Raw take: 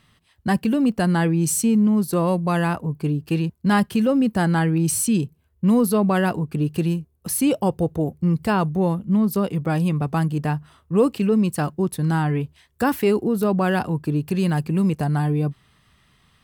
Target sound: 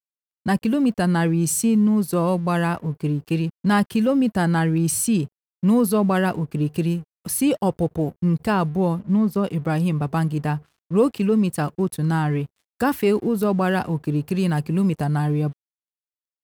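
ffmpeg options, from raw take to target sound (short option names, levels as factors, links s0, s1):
-filter_complex "[0:a]asettb=1/sr,asplit=3[s0][s1][s2];[s0]atrim=end=9.004[s3];[s1]atrim=start=9:end=9.44,asetpts=PTS-STARTPTS,afade=t=in:d=0.004:c=qsin,afade=t=out:st=0.436:d=0.004:c=qsin,lowpass=f=3700:p=1[s4];[s2]atrim=start=9.436[s5];[s3][s4]acrossfade=d=0.004:c1=hsin:c2=qsin[s6];[s6][s5]acrossfade=d=0.004:c1=qsin:c2=hsin,aeval=exprs='sgn(val(0))*max(abs(val(0))-0.00398,0)':c=same"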